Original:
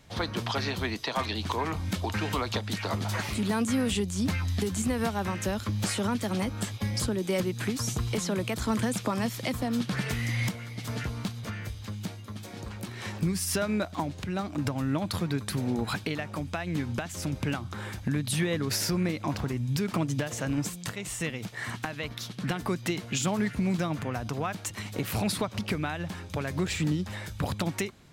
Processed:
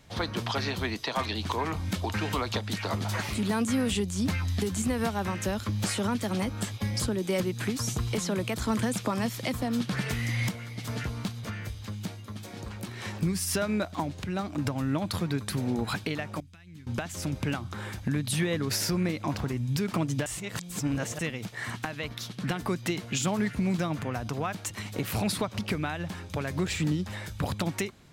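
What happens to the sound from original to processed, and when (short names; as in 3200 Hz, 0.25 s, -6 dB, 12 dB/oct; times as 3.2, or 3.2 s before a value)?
16.4–16.87 passive tone stack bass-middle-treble 6-0-2
20.26–21.19 reverse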